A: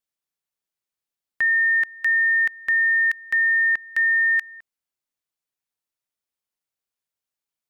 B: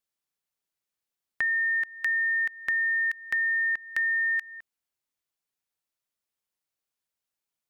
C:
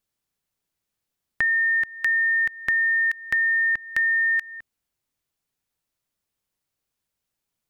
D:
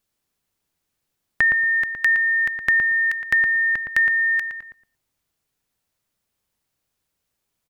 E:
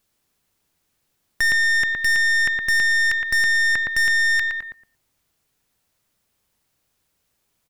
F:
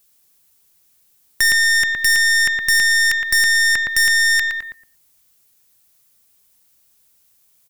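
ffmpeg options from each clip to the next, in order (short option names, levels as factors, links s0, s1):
-af "acompressor=threshold=0.0398:ratio=2.5"
-af "lowshelf=f=260:g=10.5,volume=1.68"
-filter_complex "[0:a]asplit=2[s0][s1];[s1]adelay=115,lowpass=f=1200:p=1,volume=0.708,asplit=2[s2][s3];[s3]adelay=115,lowpass=f=1200:p=1,volume=0.23,asplit=2[s4][s5];[s5]adelay=115,lowpass=f=1200:p=1,volume=0.23[s6];[s0][s2][s4][s6]amix=inputs=4:normalize=0,volume=1.68"
-af "aeval=exprs='(tanh(17.8*val(0)+0.45)-tanh(0.45))/17.8':c=same,volume=2.51"
-af "crystalizer=i=3:c=0"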